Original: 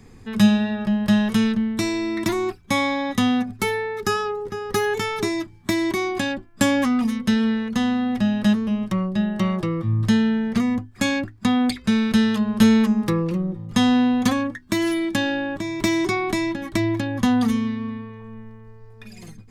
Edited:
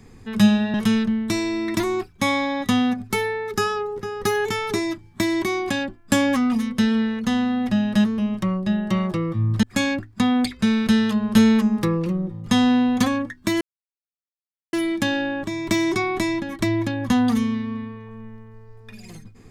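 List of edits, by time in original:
0:00.74–0:01.23: remove
0:10.12–0:10.88: remove
0:14.86: splice in silence 1.12 s

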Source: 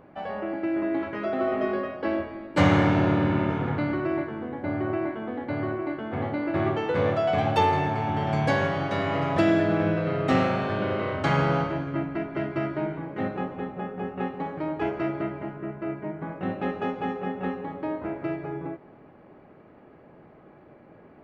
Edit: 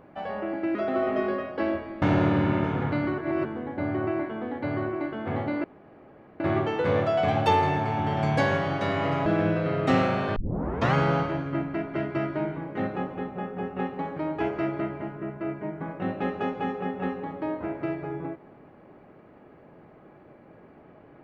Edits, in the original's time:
0:00.75–0:01.20: remove
0:02.47–0:02.88: remove
0:04.04–0:04.31: reverse
0:06.50: splice in room tone 0.76 s
0:09.36–0:09.67: remove
0:10.77: tape start 0.58 s

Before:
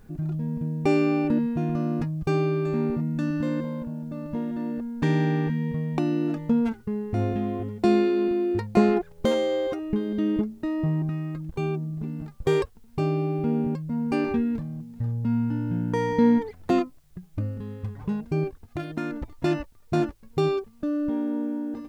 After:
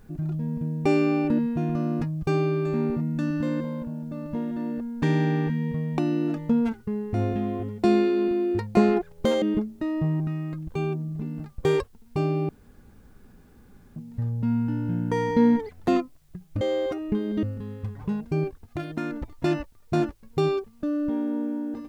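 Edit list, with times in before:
0:09.42–0:10.24: move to 0:17.43
0:13.31–0:14.78: fill with room tone

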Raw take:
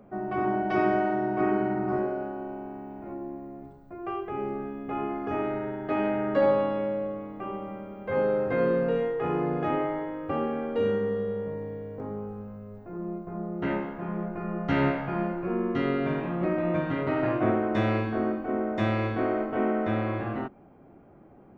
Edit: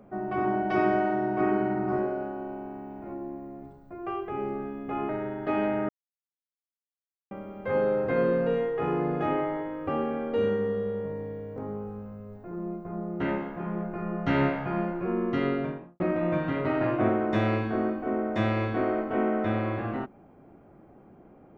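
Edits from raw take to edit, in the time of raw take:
0:05.09–0:05.51: remove
0:06.31–0:07.73: silence
0:15.87–0:16.42: fade out and dull

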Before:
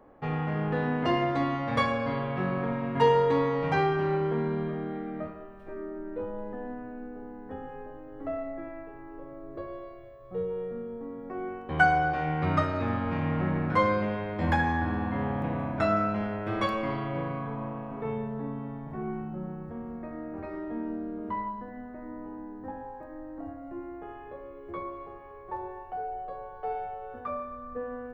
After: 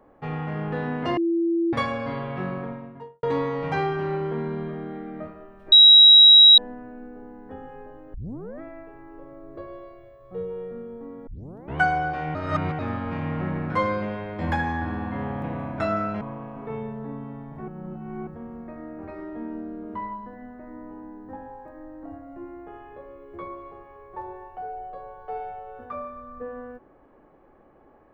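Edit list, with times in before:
0:01.17–0:01.73: beep over 336 Hz −19.5 dBFS
0:02.36–0:03.23: fade out and dull
0:05.72–0:06.58: beep over 3,850 Hz −7.5 dBFS
0:08.14: tape start 0.47 s
0:11.27: tape start 0.51 s
0:12.35–0:12.79: reverse
0:16.21–0:17.56: remove
0:19.03–0:19.62: reverse

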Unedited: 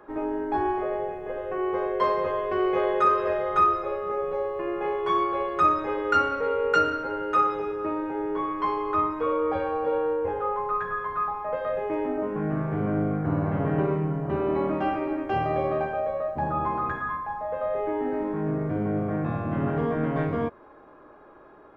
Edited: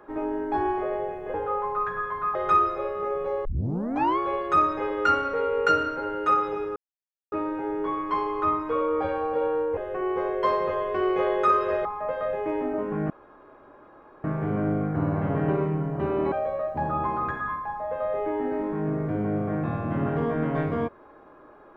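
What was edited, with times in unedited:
0:01.34–0:03.42: swap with 0:10.28–0:11.29
0:04.52: tape start 0.73 s
0:07.83: splice in silence 0.56 s
0:12.54: splice in room tone 1.14 s
0:14.62–0:15.93: remove

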